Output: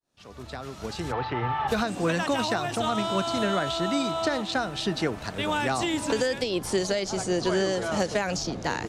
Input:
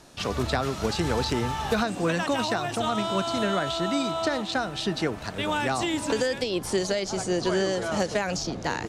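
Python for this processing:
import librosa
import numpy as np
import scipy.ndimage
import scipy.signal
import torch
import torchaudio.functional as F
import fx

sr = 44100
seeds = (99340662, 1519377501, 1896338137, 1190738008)

y = fx.fade_in_head(x, sr, length_s=2.09)
y = fx.cabinet(y, sr, low_hz=120.0, low_slope=12, high_hz=3200.0, hz=(120.0, 210.0, 800.0, 1200.0, 1900.0), db=(8, -10, 8, 7, 6), at=(1.11, 1.67), fade=0.02)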